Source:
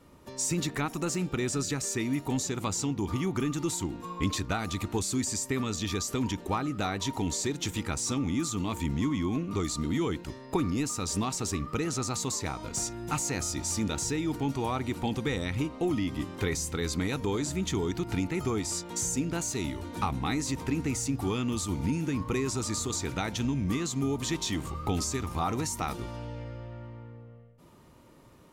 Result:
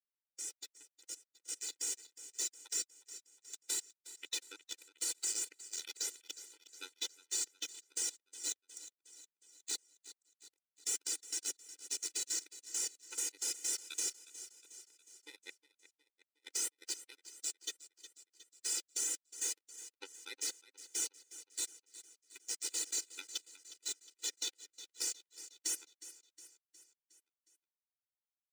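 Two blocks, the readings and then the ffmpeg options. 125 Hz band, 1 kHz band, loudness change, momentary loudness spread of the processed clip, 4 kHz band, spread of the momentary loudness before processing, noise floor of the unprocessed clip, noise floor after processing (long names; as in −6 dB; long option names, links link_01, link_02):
below −40 dB, −27.5 dB, −8.0 dB, 18 LU, −5.5 dB, 3 LU, −51 dBFS, below −85 dBFS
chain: -filter_complex "[0:a]aderivative,aeval=exprs='sgn(val(0))*max(abs(val(0))-0.00251,0)':channel_layout=same,afftfilt=real='re*gte(hypot(re,im),0.00708)':imag='im*gte(hypot(re,im),0.00708)':win_size=1024:overlap=0.75,acrusher=bits=5:mix=0:aa=0.5,lowpass=frequency=2600:poles=1,asplit=2[link_01][link_02];[link_02]aecho=0:1:362|724|1086|1448|1810:0.126|0.0692|0.0381|0.0209|0.0115[link_03];[link_01][link_03]amix=inputs=2:normalize=0,dynaudnorm=framelen=220:gausssize=17:maxgain=14dB,equalizer=frequency=1000:width=1.8:gain=-14,alimiter=limit=-21.5dB:level=0:latency=1:release=406,asoftclip=type=tanh:threshold=-25dB,afftfilt=real='re*eq(mod(floor(b*sr/1024/260),2),1)':imag='im*eq(mod(floor(b*sr/1024/260),2),1)':win_size=1024:overlap=0.75,volume=1dB"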